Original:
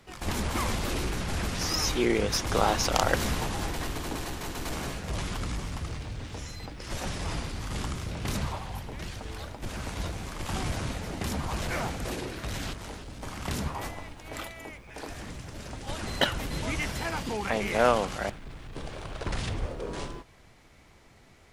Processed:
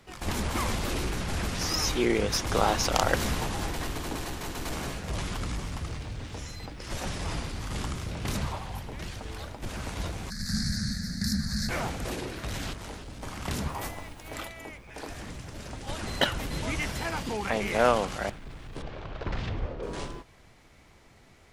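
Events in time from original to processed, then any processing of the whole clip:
0:10.30–0:11.69: drawn EQ curve 130 Hz 0 dB, 220 Hz +10 dB, 330 Hz −21 dB, 600 Hz −18 dB, 1,000 Hz −25 dB, 1,700 Hz +6 dB, 3,000 Hz −29 dB, 4,300 Hz +14 dB, 7,200 Hz +2 dB
0:13.69–0:14.34: high-shelf EQ 11,000 Hz +11.5 dB
0:18.82–0:19.83: high-frequency loss of the air 180 metres

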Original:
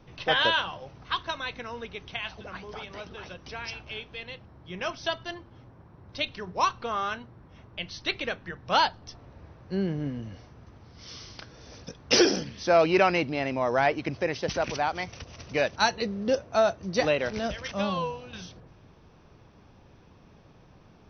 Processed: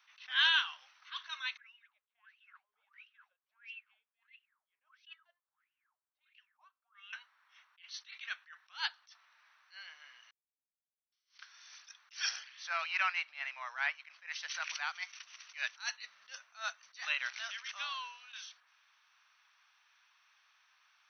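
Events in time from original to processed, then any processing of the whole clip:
0:01.57–0:07.13: LFO wah 1.5 Hz 400–2,900 Hz, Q 16
0:10.31–0:11.12: silence
0:12.29–0:14.29: low-pass filter 2,800 Hz 6 dB per octave
whole clip: inverse Chebyshev high-pass filter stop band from 390 Hz, stop band 60 dB; notch filter 5,000 Hz, Q 10; level that may rise only so fast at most 220 dB per second; level −1.5 dB

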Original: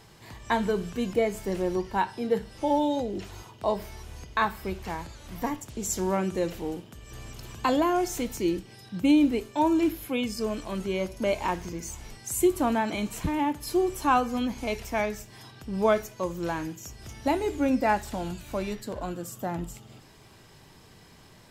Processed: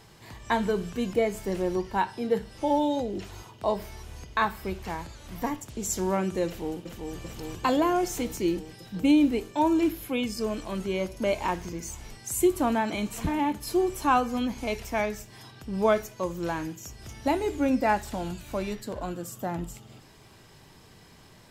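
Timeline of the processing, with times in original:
0:06.46–0:07.16: delay throw 390 ms, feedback 80%, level −4.5 dB
0:12.67–0:13.20: delay throw 510 ms, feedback 25%, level −15 dB

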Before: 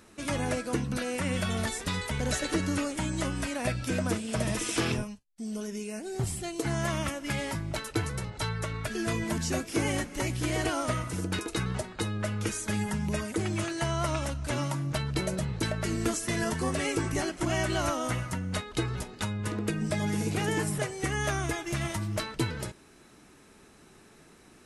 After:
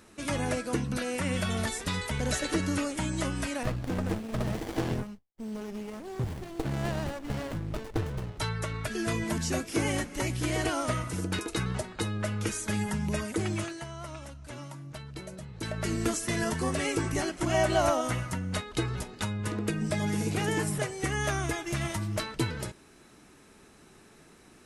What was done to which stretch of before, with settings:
0:03.63–0:08.40: windowed peak hold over 33 samples
0:13.52–0:15.86: duck −11.5 dB, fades 0.33 s
0:17.54–0:18.01: parametric band 690 Hz +9 dB

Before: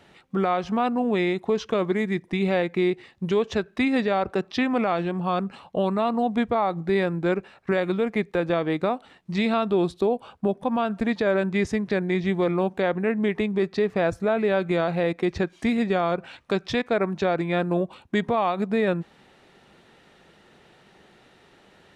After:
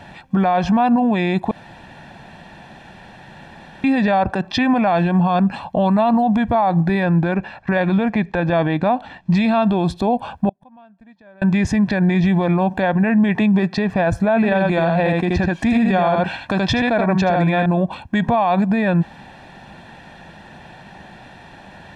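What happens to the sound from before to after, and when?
0:01.51–0:03.84: fill with room tone
0:07.03–0:09.34: low-pass filter 5,800 Hz
0:10.49–0:11.42: gate with flip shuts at −32 dBFS, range −37 dB
0:13.35–0:13.78: high-pass filter 110 Hz 24 dB per octave
0:14.36–0:17.66: single-tap delay 78 ms −5 dB
whole clip: high-shelf EQ 3,600 Hz −9.5 dB; comb filter 1.2 ms, depth 69%; boost into a limiter +22.5 dB; level −8.5 dB

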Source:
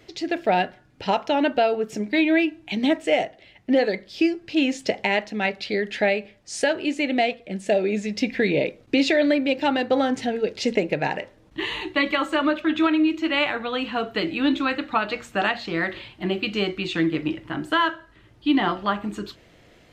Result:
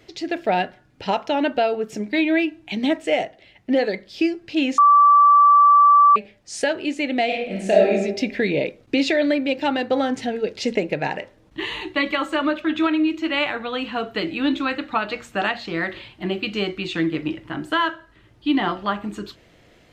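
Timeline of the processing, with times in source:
0:04.78–0:06.16: beep over 1,160 Hz −9 dBFS
0:07.25–0:07.91: thrown reverb, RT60 0.86 s, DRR −3.5 dB

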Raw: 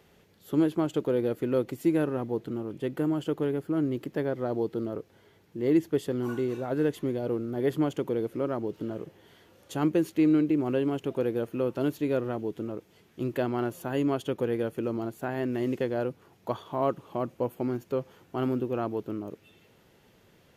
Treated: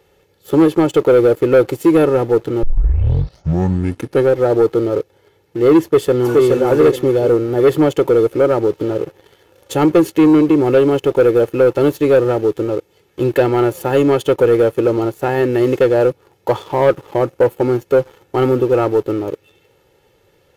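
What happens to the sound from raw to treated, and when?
0:02.63: tape start 1.72 s
0:05.82–0:06.49: delay throw 420 ms, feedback 25%, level −2 dB
whole clip: parametric band 570 Hz +6.5 dB 0.43 octaves; comb filter 2.3 ms, depth 63%; leveller curve on the samples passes 2; level +6 dB

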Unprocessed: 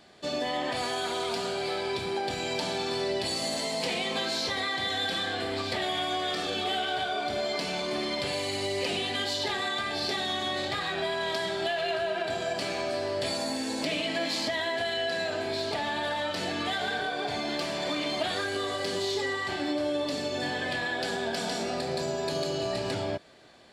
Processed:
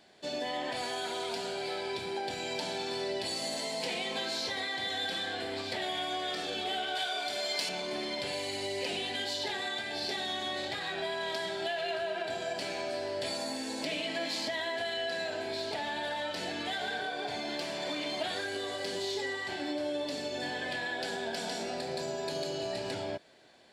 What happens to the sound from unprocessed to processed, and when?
0:06.95–0:07.69: spectral tilt +3 dB per octave
whole clip: low-shelf EQ 150 Hz −8 dB; notch filter 1,200 Hz, Q 9; level −4 dB

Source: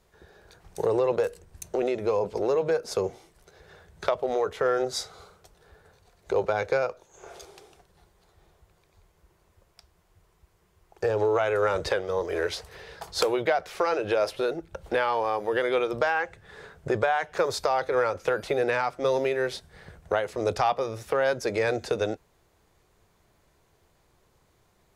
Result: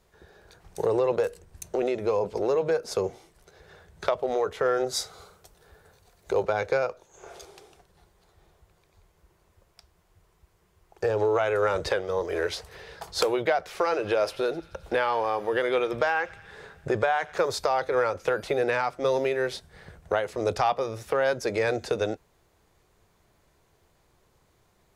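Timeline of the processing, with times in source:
0:04.87–0:06.43: high-shelf EQ 8,300 Hz +8 dB
0:13.70–0:17.45: delay with a high-pass on its return 87 ms, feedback 75%, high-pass 1,400 Hz, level −19 dB

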